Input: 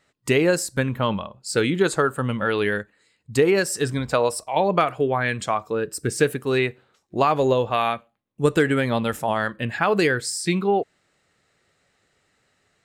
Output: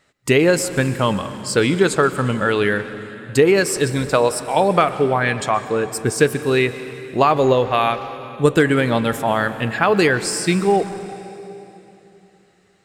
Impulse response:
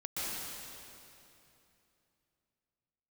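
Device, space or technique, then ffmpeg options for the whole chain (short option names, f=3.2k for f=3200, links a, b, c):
saturated reverb return: -filter_complex "[0:a]asplit=2[a][b];[1:a]atrim=start_sample=2205[c];[b][c]afir=irnorm=-1:irlink=0,asoftclip=type=tanh:threshold=-15dB,volume=-13dB[d];[a][d]amix=inputs=2:normalize=0,volume=3.5dB"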